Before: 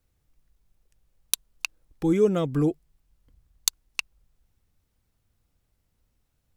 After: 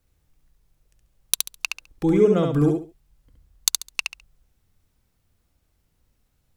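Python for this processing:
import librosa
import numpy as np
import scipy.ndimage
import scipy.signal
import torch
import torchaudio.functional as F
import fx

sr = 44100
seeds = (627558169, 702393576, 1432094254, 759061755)

y = fx.high_shelf(x, sr, hz=6200.0, db=-10.5, at=(2.05, 2.5))
y = fx.echo_feedback(y, sr, ms=69, feedback_pct=23, wet_db=-4.0)
y = y * librosa.db_to_amplitude(3.0)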